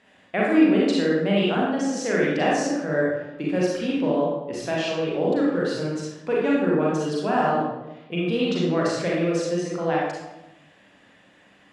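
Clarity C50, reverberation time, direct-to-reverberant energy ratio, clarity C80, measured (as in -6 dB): -1.0 dB, 1.0 s, -5.5 dB, 2.5 dB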